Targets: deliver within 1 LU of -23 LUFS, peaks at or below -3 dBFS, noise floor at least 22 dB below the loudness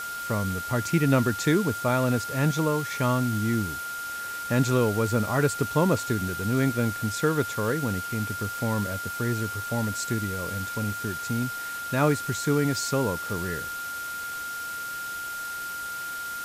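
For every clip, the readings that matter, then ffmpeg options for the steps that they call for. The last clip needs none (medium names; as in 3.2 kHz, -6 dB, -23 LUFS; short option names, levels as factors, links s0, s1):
steady tone 1.4 kHz; tone level -32 dBFS; noise floor -34 dBFS; noise floor target -49 dBFS; loudness -27.0 LUFS; peak level -9.0 dBFS; loudness target -23.0 LUFS
-> -af "bandreject=f=1400:w=30"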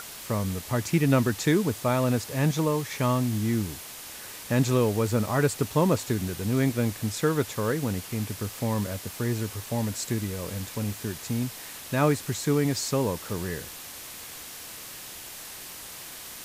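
steady tone not found; noise floor -42 dBFS; noise floor target -49 dBFS
-> -af "afftdn=nr=7:nf=-42"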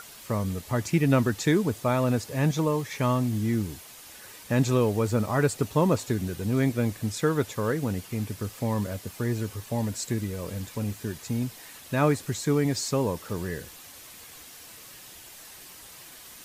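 noise floor -47 dBFS; noise floor target -50 dBFS
-> -af "afftdn=nr=6:nf=-47"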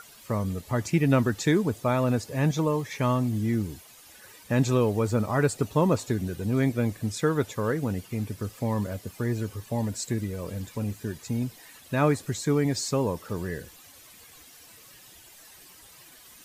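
noise floor -51 dBFS; loudness -27.5 LUFS; peak level -9.0 dBFS; loudness target -23.0 LUFS
-> -af "volume=1.68"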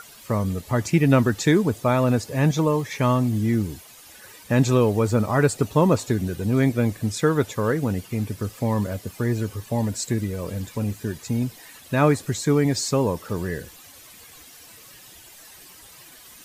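loudness -23.0 LUFS; peak level -4.5 dBFS; noise floor -47 dBFS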